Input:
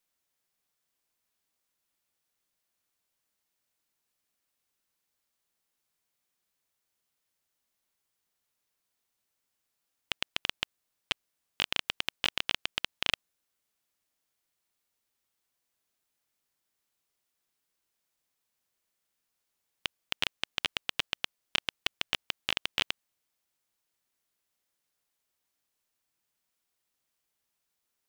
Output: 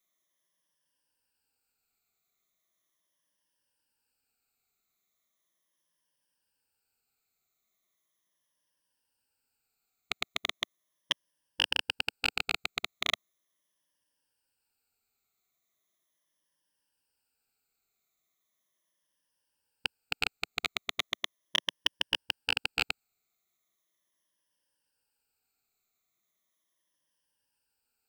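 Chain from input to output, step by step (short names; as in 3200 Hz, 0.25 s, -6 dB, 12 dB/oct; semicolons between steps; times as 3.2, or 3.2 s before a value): moving spectral ripple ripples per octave 1.2, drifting -0.38 Hz, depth 15 dB; gain -2 dB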